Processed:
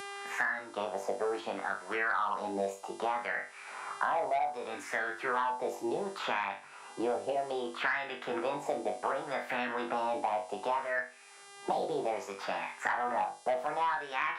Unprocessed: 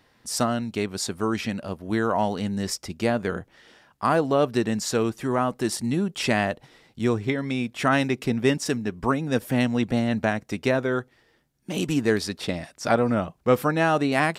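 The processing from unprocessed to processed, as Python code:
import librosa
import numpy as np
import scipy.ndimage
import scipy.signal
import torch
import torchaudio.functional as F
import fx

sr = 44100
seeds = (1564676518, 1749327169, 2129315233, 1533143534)

p1 = fx.fade_in_head(x, sr, length_s=1.18)
p2 = scipy.signal.sosfilt(scipy.signal.butter(4, 120.0, 'highpass', fs=sr, output='sos'), p1)
p3 = fx.peak_eq(p2, sr, hz=730.0, db=4.0, octaves=0.94)
p4 = fx.over_compress(p3, sr, threshold_db=-25.0, ratio=-1.0)
p5 = p3 + F.gain(torch.from_numpy(p4), 1.0).numpy()
p6 = fx.formant_shift(p5, sr, semitones=5)
p7 = p6 + fx.room_flutter(p6, sr, wall_m=3.5, rt60_s=0.28, dry=0)
p8 = fx.wah_lfo(p7, sr, hz=0.65, low_hz=700.0, high_hz=1800.0, q=3.0)
p9 = 10.0 ** (-12.0 / 20.0) * np.tanh(p8 / 10.0 ** (-12.0 / 20.0))
p10 = fx.dmg_buzz(p9, sr, base_hz=400.0, harmonics=28, level_db=-58.0, tilt_db=0, odd_only=False)
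p11 = fx.doubler(p10, sr, ms=49.0, db=-14.0)
p12 = fx.band_squash(p11, sr, depth_pct=100)
y = F.gain(torch.from_numpy(p12), -7.5).numpy()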